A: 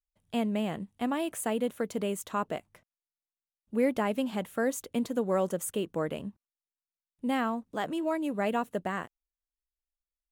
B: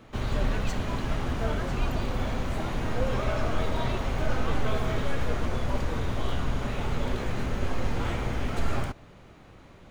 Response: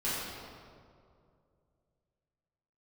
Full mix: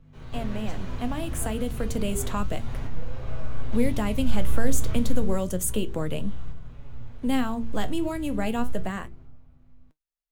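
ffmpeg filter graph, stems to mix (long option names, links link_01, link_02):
-filter_complex "[0:a]bandreject=frequency=56.96:width_type=h:width=4,bandreject=frequency=113.92:width_type=h:width=4,bandreject=frequency=170.88:width_type=h:width=4,bandreject=frequency=227.84:width_type=h:width=4,bandreject=frequency=284.8:width_type=h:width=4,bandreject=frequency=341.76:width_type=h:width=4,bandreject=frequency=398.72:width_type=h:width=4,bandreject=frequency=455.68:width_type=h:width=4,dynaudnorm=framelen=230:gausssize=13:maxgain=11.5dB,volume=1.5dB,asplit=2[link_01][link_02];[1:a]asubboost=boost=2.5:cutoff=180,aeval=exprs='val(0)+0.0224*(sin(2*PI*50*n/s)+sin(2*PI*2*50*n/s)/2+sin(2*PI*3*50*n/s)/3+sin(2*PI*4*50*n/s)/4+sin(2*PI*5*50*n/s)/5)':channel_layout=same,volume=-5.5dB,afade=type=out:start_time=4.98:duration=0.45:silence=0.334965,asplit=2[link_03][link_04];[link_04]volume=-11.5dB[link_05];[link_02]apad=whole_len=437002[link_06];[link_03][link_06]sidechaingate=range=-13dB:threshold=-52dB:ratio=16:detection=peak[link_07];[2:a]atrim=start_sample=2205[link_08];[link_05][link_08]afir=irnorm=-1:irlink=0[link_09];[link_01][link_07][link_09]amix=inputs=3:normalize=0,acrossover=split=240|3000[link_10][link_11][link_12];[link_11]acompressor=threshold=-28dB:ratio=3[link_13];[link_10][link_13][link_12]amix=inputs=3:normalize=0,flanger=delay=5.9:depth=9:regen=69:speed=0.31:shape=sinusoidal"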